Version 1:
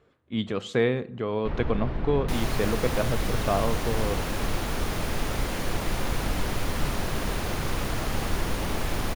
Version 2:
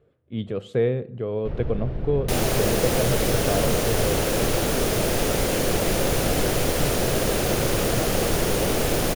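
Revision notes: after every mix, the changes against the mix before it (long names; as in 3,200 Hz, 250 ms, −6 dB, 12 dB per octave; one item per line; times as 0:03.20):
speech: add parametric band 6,300 Hz −10.5 dB 0.98 octaves
second sound +12.0 dB
master: add octave-band graphic EQ 125/250/500/1,000/2,000/4,000 Hz +5/−4/+5/−9/−5/−4 dB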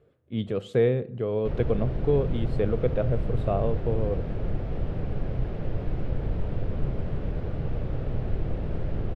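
second sound: muted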